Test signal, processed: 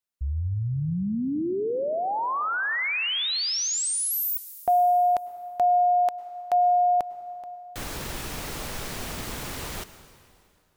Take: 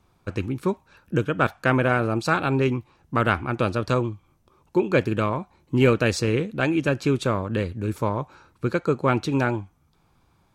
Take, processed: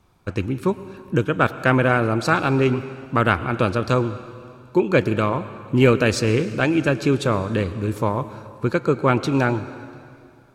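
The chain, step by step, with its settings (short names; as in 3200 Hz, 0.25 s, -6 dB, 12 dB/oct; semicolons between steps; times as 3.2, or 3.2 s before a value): plate-style reverb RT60 2.4 s, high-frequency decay 0.9×, pre-delay 90 ms, DRR 13.5 dB; gain +3 dB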